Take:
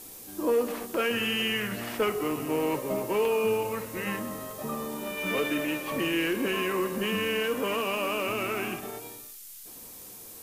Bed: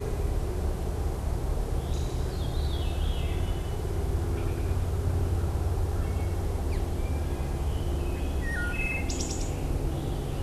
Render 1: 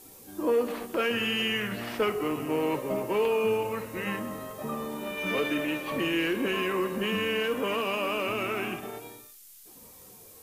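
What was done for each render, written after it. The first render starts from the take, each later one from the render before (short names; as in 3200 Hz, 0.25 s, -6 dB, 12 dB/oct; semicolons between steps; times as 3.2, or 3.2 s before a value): noise print and reduce 6 dB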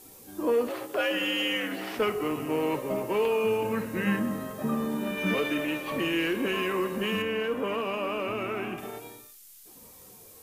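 0.69–1.97 frequency shift +78 Hz; 3.62–5.34 small resonant body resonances 200/1600 Hz, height 9 dB, ringing for 20 ms; 7.22–8.78 high shelf 2800 Hz -10 dB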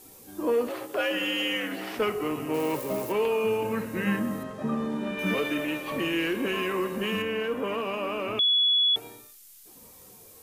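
2.54–3.12 switching spikes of -31.5 dBFS; 4.43–5.19 air absorption 70 m; 8.39–8.96 bleep 3390 Hz -19 dBFS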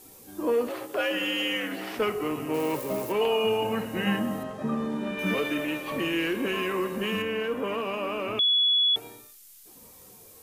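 3.21–4.57 small resonant body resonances 740/2900 Hz, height 16 dB, ringing for 50 ms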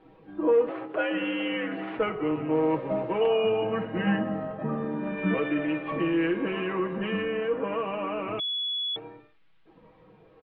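Bessel low-pass 1800 Hz, order 8; comb 6.2 ms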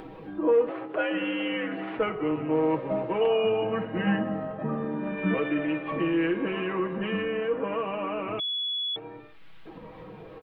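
upward compressor, threshold -32 dBFS; ending taper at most 370 dB/s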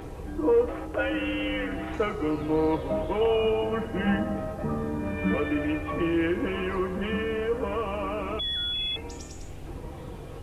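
add bed -10.5 dB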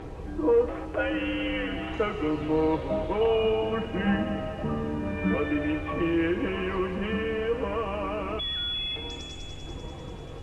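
air absorption 64 m; thin delay 0.196 s, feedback 70%, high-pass 2800 Hz, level -4.5 dB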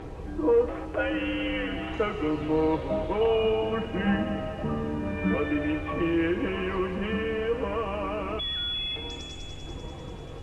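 nothing audible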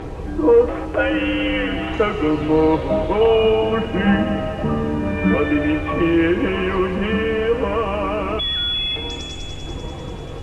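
gain +9 dB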